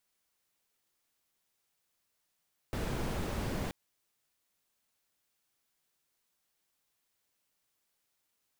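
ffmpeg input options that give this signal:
-f lavfi -i "anoisesrc=c=brown:a=0.0881:d=0.98:r=44100:seed=1"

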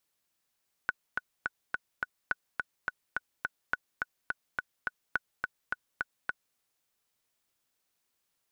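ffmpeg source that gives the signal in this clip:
-f lavfi -i "aevalsrc='pow(10,(-14.5-3*gte(mod(t,5*60/211),60/211))/20)*sin(2*PI*1480*mod(t,60/211))*exp(-6.91*mod(t,60/211)/0.03)':d=5.68:s=44100"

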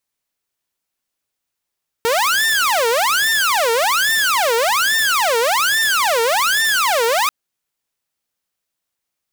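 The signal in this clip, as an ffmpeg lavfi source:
-f lavfi -i "aevalsrc='0.266*(2*mod((1127*t-673/(2*PI*1.2)*sin(2*PI*1.2*t)),1)-1)':d=5.24:s=44100"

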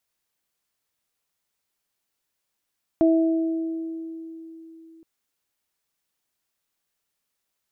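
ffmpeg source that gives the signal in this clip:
-f lavfi -i "aevalsrc='0.188*pow(10,-3*t/3.69)*sin(2*PI*326*t)+0.106*pow(10,-3*t/1.61)*sin(2*PI*652*t)':d=2.02:s=44100"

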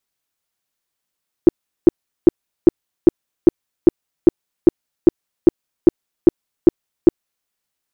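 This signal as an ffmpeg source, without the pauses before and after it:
-f lavfi -i "aevalsrc='0.794*sin(2*PI*342*mod(t,0.4))*lt(mod(t,0.4),6/342)':d=6:s=44100"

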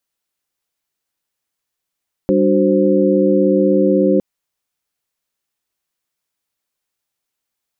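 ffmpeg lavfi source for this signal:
-f lavfi -i "aevalsrc='0.158*(sin(2*PI*196*t)+sin(2*PI*293.66*t)+sin(2*PI*369.99*t)+sin(2*PI*523.25*t))':d=1.91:s=44100"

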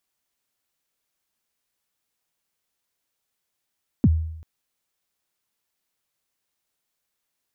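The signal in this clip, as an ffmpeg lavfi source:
-f lavfi -i "aevalsrc='0.299*pow(10,-3*t/0.78)*sin(2*PI*(300*0.042/log(80/300)*(exp(log(80/300)*min(t,0.042)/0.042)-1)+80*max(t-0.042,0)))':d=0.39:s=44100"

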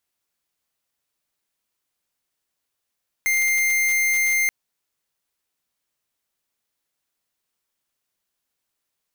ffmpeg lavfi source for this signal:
-f lavfi -i "aevalsrc='0.1*(2*lt(mod(2100*t,1),0.5)-1)':d=1.23:s=44100"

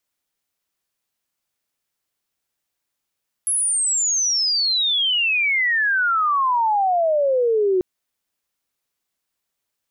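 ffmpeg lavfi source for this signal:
-f lavfi -i "aevalsrc='pow(10,(-17.5+2.5*t/4.34)/20)*sin(2*PI*11000*4.34/log(360/11000)*(exp(log(360/11000)*t/4.34)-1))':d=4.34:s=44100"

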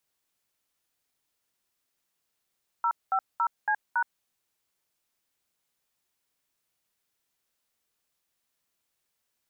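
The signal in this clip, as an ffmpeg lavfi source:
-f lavfi -i "aevalsrc='0.0562*clip(min(mod(t,0.279),0.071-mod(t,0.279))/0.002,0,1)*(eq(floor(t/0.279),0)*(sin(2*PI*941*mod(t,0.279))+sin(2*PI*1336*mod(t,0.279)))+eq(floor(t/0.279),1)*(sin(2*PI*770*mod(t,0.279))+sin(2*PI*1336*mod(t,0.279)))+eq(floor(t/0.279),2)*(sin(2*PI*941*mod(t,0.279))+sin(2*PI*1336*mod(t,0.279)))+eq(floor(t/0.279),3)*(sin(2*PI*852*mod(t,0.279))+sin(2*PI*1633*mod(t,0.279)))+eq(floor(t/0.279),4)*(sin(2*PI*941*mod(t,0.279))+sin(2*PI*1477*mod(t,0.279))))':d=1.395:s=44100"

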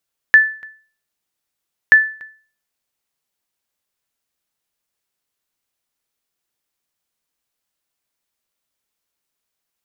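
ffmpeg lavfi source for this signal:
-f lavfi -i "aevalsrc='0.891*(sin(2*PI*1750*mod(t,1.58))*exp(-6.91*mod(t,1.58)/0.41)+0.0501*sin(2*PI*1750*max(mod(t,1.58)-0.29,0))*exp(-6.91*max(mod(t,1.58)-0.29,0)/0.41))':d=3.16:s=44100"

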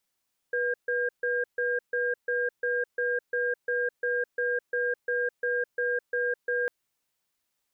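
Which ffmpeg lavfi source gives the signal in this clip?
-f lavfi -i "aevalsrc='0.0422*(sin(2*PI*488*t)+sin(2*PI*1610*t))*clip(min(mod(t,0.35),0.21-mod(t,0.35))/0.005,0,1)':d=6.15:s=44100"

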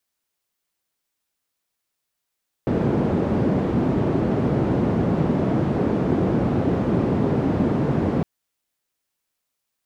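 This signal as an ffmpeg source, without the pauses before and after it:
-f lavfi -i "anoisesrc=c=white:d=5.56:r=44100:seed=1,highpass=f=110,lowpass=f=290,volume=4.6dB"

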